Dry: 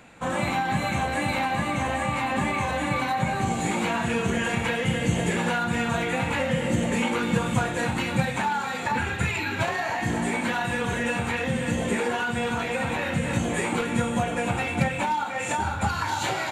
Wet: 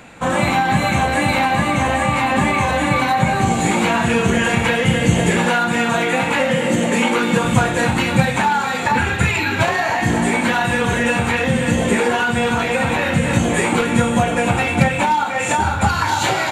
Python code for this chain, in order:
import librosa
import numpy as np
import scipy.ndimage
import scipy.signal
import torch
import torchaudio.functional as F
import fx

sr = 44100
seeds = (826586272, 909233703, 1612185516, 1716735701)

y = fx.highpass(x, sr, hz=190.0, slope=12, at=(5.45, 7.45))
y = F.gain(torch.from_numpy(y), 9.0).numpy()